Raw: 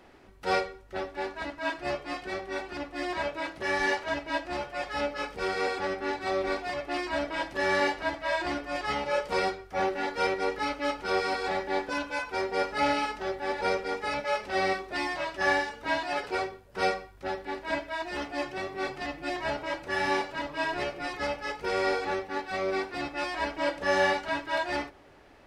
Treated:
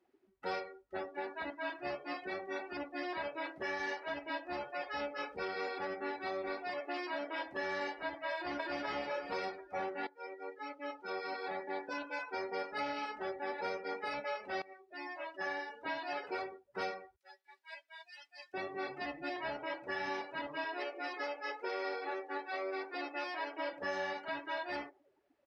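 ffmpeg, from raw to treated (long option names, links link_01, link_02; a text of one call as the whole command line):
ffmpeg -i in.wav -filter_complex "[0:a]asettb=1/sr,asplit=3[link_01][link_02][link_03];[link_01]atrim=end=6.744[link_04];[link_02]atrim=start=6.74:end=7.46,asetpts=PTS-STARTPTS,afade=type=in:duration=0.004:curve=qsin,afade=type=out:start_time=0.716:duration=0.004:curve=qsin,highpass=200[link_05];[link_03]atrim=start=7.456[link_06];[link_04][link_05]acrossfade=duration=0.004:curve1=hsin:curve2=qsin[link_07];[link_07][link_06]acrossfade=duration=0.004:curve1=qsin:curve2=hsin,asplit=2[link_08][link_09];[link_09]afade=type=in:start_time=8.34:duration=0.01,afade=type=out:start_time=8.84:duration=0.01,aecho=0:1:250|500|750|1000|1250|1500|1750:1|0.5|0.25|0.125|0.0625|0.03125|0.015625[link_10];[link_08][link_10]amix=inputs=2:normalize=0,asettb=1/sr,asplit=3[link_11][link_12][link_13];[link_11]atrim=end=17.164[link_14];[link_12]atrim=start=17.16:end=18.54,asetpts=PTS-STARTPTS,afade=type=in:duration=0.004:curve=qsin,afade=type=out:start_time=1.376:duration=0.004:curve=qsin,aderivative[link_15];[link_13]atrim=start=18.536[link_16];[link_14][link_15]acrossfade=duration=0.004:curve1=hsin:curve2=qsin[link_17];[link_17][link_16]acrossfade=duration=0.004:curve1=qsin:curve2=hsin,asettb=1/sr,asplit=3[link_18][link_19][link_20];[link_18]atrim=end=20.654[link_21];[link_19]atrim=start=20.65:end=23.73,asetpts=PTS-STARTPTS,afade=type=in:duration=0.004:curve=qsin,afade=type=out:start_time=3.076:duration=0.004:curve=qsin,highpass=frequency=280:width=0.5412,highpass=frequency=280:width=1.3066[link_22];[link_20]atrim=start=23.726[link_23];[link_21][link_22]acrossfade=duration=0.004:curve1=hsin:curve2=qsin[link_24];[link_24][link_23]acrossfade=duration=0.004:curve1=qsin:curve2=hsin,asplit=3[link_25][link_26][link_27];[link_25]atrim=end=10.07,asetpts=PTS-STARTPTS,afade=type=out:start_time=10.066:duration=0.004:curve=hsin:silence=0.105925[link_28];[link_26]atrim=start=10.07:end=14.62,asetpts=PTS-STARTPTS,afade=type=in:duration=2.67:silence=0.105925,afade=type=out:start_time=4.546:duration=0.004:curve=hsin:silence=0.0630957[link_29];[link_27]atrim=start=14.62,asetpts=PTS-STARTPTS,afade=type=in:duration=1.51:silence=0.0630957[link_30];[link_28][link_29][link_30]concat=n=3:v=0:a=1,highpass=frequency=160:poles=1,afftdn=noise_reduction=23:noise_floor=-43,acompressor=threshold=-34dB:ratio=4,volume=-2.5dB" out.wav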